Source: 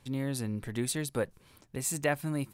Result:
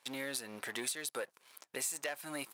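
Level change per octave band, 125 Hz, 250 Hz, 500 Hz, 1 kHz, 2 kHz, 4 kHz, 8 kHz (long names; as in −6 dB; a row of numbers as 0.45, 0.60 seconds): −24.5, −13.0, −8.5, −6.5, −2.5, +0.5, −2.5 decibels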